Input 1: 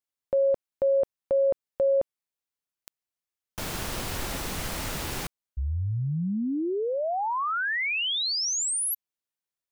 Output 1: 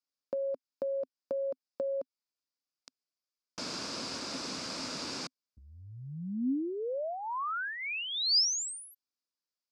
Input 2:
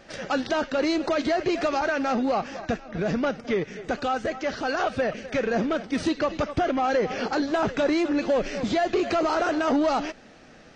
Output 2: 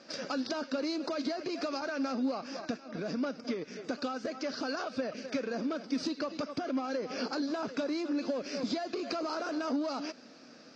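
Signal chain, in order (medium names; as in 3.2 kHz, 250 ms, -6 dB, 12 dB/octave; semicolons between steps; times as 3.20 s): compression, threshold -28 dBFS; cabinet simulation 240–7100 Hz, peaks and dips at 260 Hz +7 dB, 390 Hz -4 dB, 790 Hz -7 dB, 1.9 kHz -8 dB, 3.1 kHz -6 dB, 4.9 kHz +10 dB; trim -2.5 dB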